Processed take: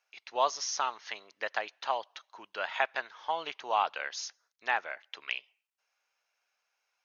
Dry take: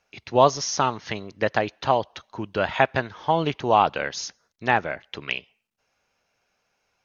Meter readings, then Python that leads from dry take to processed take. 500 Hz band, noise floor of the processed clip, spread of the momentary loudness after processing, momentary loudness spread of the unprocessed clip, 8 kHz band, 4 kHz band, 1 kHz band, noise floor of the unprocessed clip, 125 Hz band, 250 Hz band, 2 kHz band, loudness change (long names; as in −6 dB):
−14.0 dB, −82 dBFS, 12 LU, 13 LU, can't be measured, −6.5 dB, −9.5 dB, −74 dBFS, below −35 dB, −25.5 dB, −6.5 dB, −10.0 dB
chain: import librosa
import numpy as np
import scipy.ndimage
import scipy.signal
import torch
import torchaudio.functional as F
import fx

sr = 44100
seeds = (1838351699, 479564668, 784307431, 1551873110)

y = scipy.signal.sosfilt(scipy.signal.butter(2, 860.0, 'highpass', fs=sr, output='sos'), x)
y = y * 10.0 ** (-6.5 / 20.0)